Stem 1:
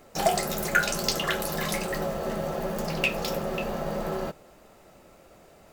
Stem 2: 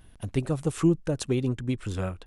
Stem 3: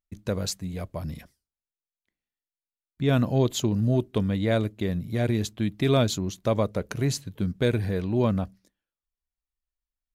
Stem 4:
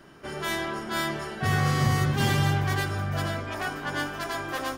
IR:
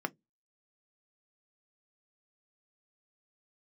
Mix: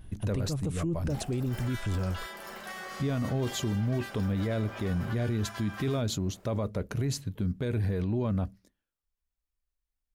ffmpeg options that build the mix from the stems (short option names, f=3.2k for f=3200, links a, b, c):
-filter_complex "[0:a]acompressor=threshold=-36dB:ratio=6,adelay=950,volume=-10dB,asplit=2[a][b];[b]volume=-7.5dB[c];[1:a]volume=-2dB[d];[2:a]volume=-3dB,asplit=2[e][f];[f]volume=-14dB[g];[3:a]highpass=840,adelay=1250,volume=-6dB[h];[a][h]amix=inputs=2:normalize=0,acompressor=threshold=-38dB:ratio=6,volume=0dB[i];[d][e]amix=inputs=2:normalize=0,lowshelf=f=300:g=8.5,alimiter=limit=-16.5dB:level=0:latency=1:release=170,volume=0dB[j];[4:a]atrim=start_sample=2205[k];[c][g]amix=inputs=2:normalize=0[l];[l][k]afir=irnorm=-1:irlink=0[m];[i][j][m]amix=inputs=3:normalize=0,alimiter=limit=-23dB:level=0:latency=1:release=13"